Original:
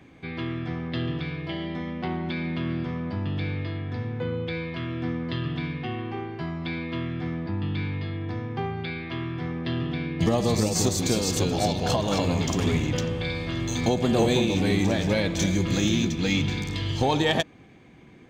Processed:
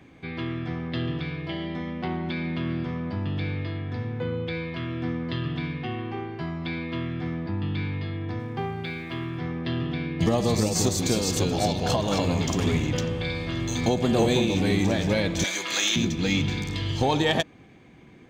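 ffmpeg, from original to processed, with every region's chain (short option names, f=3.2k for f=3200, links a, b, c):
-filter_complex "[0:a]asettb=1/sr,asplit=3[a][b][c];[a]atrim=end=8.394[d];[b]atrim=start=8.39:end=9.38,asetpts=PTS-STARTPTS,afade=t=in:d=0.004:c=qsin,afade=t=out:st=0.986:d=0.004:c=qsin,equalizer=f=90:w=4.5:g=-5,aeval=exprs='sgn(val(0))*max(abs(val(0))-0.00119,0)':c=same[e];[c]atrim=start=9.376[f];[d][e]acrossfade=d=0.004:c1=hsin:c2=qsin[g];[g][f]acrossfade=d=0.004:c1=qsin:c2=hsin,asettb=1/sr,asplit=3[h][i][j];[h]atrim=end=15.444[k];[i]atrim=start=15.44:end=15.96,asetpts=PTS-STARTPTS,afade=t=in:d=0.004:c=qsin,afade=t=out:st=0.516:d=0.004:c=qsin,highpass=940,acontrast=76[l];[j]atrim=start=15.956[m];[k][l]acrossfade=d=0.004:c1=hsin:c2=qsin[n];[n][m]acrossfade=d=0.004:c1=qsin:c2=hsin"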